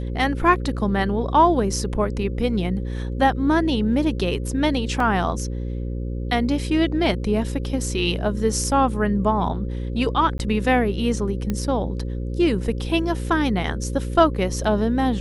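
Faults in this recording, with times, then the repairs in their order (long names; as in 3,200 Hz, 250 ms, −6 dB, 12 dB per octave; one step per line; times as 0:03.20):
mains buzz 60 Hz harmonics 9 −27 dBFS
0:05.00: drop-out 3.1 ms
0:10.38–0:10.39: drop-out 12 ms
0:11.50: click −12 dBFS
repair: click removal
hum removal 60 Hz, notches 9
repair the gap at 0:05.00, 3.1 ms
repair the gap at 0:10.38, 12 ms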